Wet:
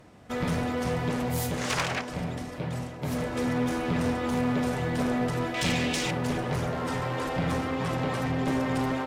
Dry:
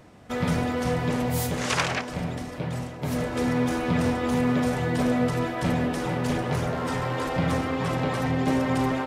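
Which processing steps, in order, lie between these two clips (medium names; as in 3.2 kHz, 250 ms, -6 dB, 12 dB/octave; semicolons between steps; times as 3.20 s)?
5.54–6.11 s: high-order bell 4.2 kHz +13.5 dB 2.3 oct; one-sided clip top -24 dBFS; trim -2 dB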